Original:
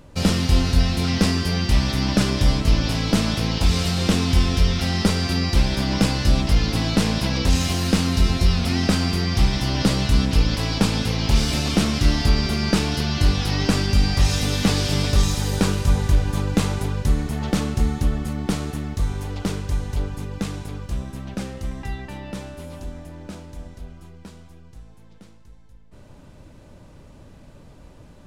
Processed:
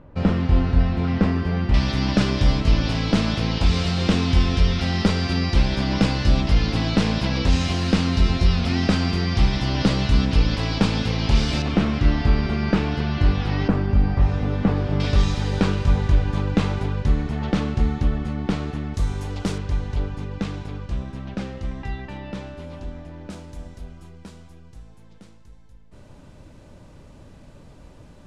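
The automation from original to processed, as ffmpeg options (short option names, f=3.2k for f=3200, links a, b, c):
-af "asetnsamples=n=441:p=0,asendcmd='1.74 lowpass f 4500;11.62 lowpass f 2400;13.68 lowpass f 1300;15 lowpass f 3600;18.94 lowpass f 8900;19.58 lowpass f 4200;23.3 lowpass f 11000',lowpass=1.7k"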